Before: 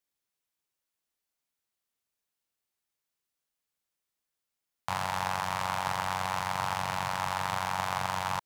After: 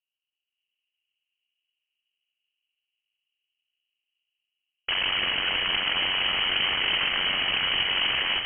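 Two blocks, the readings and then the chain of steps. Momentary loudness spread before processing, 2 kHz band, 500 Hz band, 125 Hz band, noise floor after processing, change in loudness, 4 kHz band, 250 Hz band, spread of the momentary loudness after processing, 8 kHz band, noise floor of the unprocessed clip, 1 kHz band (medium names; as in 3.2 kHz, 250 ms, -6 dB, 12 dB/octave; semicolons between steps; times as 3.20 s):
1 LU, +10.0 dB, +0.5 dB, -6.5 dB, under -85 dBFS, +8.5 dB, +18.5 dB, +1.0 dB, 2 LU, under -35 dB, under -85 dBFS, -5.5 dB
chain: hum notches 50/100/150/200/250 Hz; level-controlled noise filter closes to 550 Hz; peaking EQ 200 Hz +14.5 dB 2.4 oct; level rider gain up to 8 dB; integer overflow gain 18.5 dB; distance through air 320 m; on a send: echo whose repeats swap between lows and highs 156 ms, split 1.1 kHz, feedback 77%, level -5 dB; on the sum: frequency inversion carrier 3.1 kHz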